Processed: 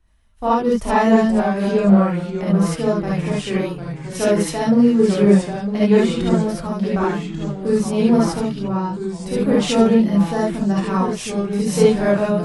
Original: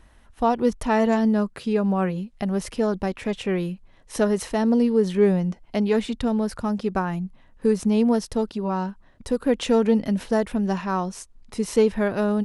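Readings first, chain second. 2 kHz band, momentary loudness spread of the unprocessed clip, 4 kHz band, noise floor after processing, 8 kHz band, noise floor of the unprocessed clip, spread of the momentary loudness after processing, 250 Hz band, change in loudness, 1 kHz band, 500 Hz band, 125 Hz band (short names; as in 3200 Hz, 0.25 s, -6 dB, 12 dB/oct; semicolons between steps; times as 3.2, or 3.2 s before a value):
+5.0 dB, 9 LU, +6.5 dB, -32 dBFS, +7.0 dB, -53 dBFS, 9 LU, +6.0 dB, +5.5 dB, +5.0 dB, +4.5 dB, +8.0 dB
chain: non-linear reverb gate 90 ms rising, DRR -5 dB; echoes that change speed 0.378 s, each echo -2 st, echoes 3, each echo -6 dB; three-band expander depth 40%; gain -1.5 dB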